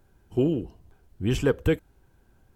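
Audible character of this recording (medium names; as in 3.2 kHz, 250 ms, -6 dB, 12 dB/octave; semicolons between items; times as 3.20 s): noise floor -63 dBFS; spectral tilt -7.0 dB/octave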